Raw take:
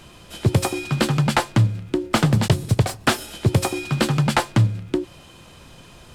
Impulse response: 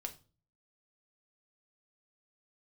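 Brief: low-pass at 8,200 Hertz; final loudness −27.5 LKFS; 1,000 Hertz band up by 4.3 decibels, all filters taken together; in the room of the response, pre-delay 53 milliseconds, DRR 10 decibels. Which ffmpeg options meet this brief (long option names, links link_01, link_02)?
-filter_complex "[0:a]lowpass=8200,equalizer=frequency=1000:width_type=o:gain=5.5,asplit=2[link_01][link_02];[1:a]atrim=start_sample=2205,adelay=53[link_03];[link_02][link_03]afir=irnorm=-1:irlink=0,volume=-8dB[link_04];[link_01][link_04]amix=inputs=2:normalize=0,volume=-7.5dB"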